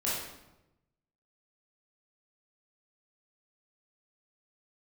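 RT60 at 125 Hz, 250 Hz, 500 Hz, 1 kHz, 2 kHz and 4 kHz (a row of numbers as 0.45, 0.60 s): 1.4, 1.1, 1.0, 0.90, 0.80, 0.70 s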